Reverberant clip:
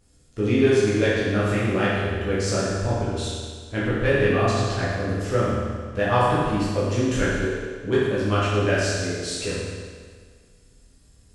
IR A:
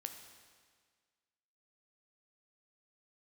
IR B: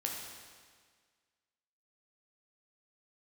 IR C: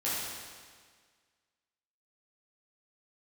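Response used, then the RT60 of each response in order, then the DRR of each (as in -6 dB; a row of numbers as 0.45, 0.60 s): C; 1.7, 1.7, 1.7 s; 5.5, -1.0, -10.0 dB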